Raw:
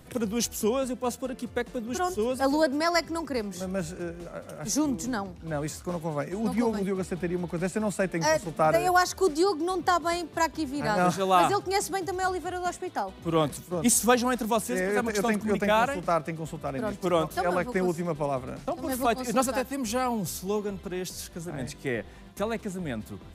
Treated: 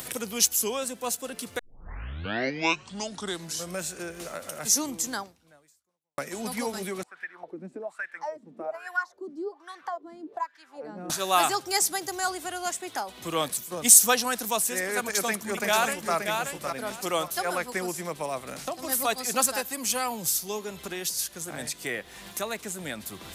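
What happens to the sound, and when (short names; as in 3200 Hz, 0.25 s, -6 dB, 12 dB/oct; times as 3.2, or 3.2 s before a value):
1.59 tape start 2.23 s
5.21–6.18 fade out exponential
7.03–11.1 wah 1.2 Hz 230–1800 Hz, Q 7.1
14.99–16.14 echo throw 0.58 s, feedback 15%, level -5 dB
whole clip: tilt +3.5 dB/oct; upward compressor, threshold -28 dBFS; gain -1 dB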